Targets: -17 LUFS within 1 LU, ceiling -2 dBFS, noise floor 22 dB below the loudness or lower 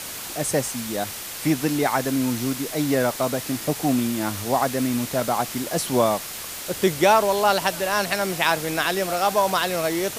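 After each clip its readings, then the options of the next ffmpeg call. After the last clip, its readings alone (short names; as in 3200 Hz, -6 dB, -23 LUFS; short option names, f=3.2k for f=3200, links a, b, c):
noise floor -34 dBFS; noise floor target -45 dBFS; loudness -23.0 LUFS; peak -4.0 dBFS; loudness target -17.0 LUFS
-> -af "afftdn=nr=11:nf=-34"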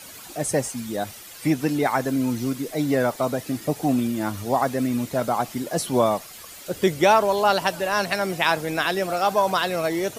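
noise floor -42 dBFS; noise floor target -45 dBFS
-> -af "afftdn=nr=6:nf=-42"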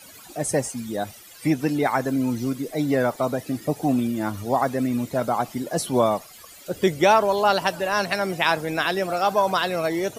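noise floor -46 dBFS; loudness -23.5 LUFS; peak -4.0 dBFS; loudness target -17.0 LUFS
-> -af "volume=6.5dB,alimiter=limit=-2dB:level=0:latency=1"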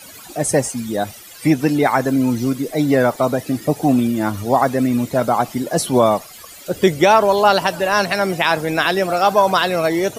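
loudness -17.0 LUFS; peak -2.0 dBFS; noise floor -39 dBFS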